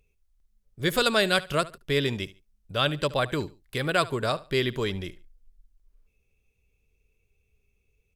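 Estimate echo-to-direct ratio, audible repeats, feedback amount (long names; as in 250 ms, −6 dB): −18.5 dB, 2, 26%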